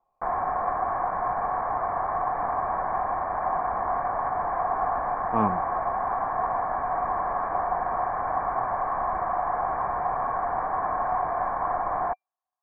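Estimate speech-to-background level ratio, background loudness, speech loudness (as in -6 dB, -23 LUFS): -1.0 dB, -27.5 LUFS, -28.5 LUFS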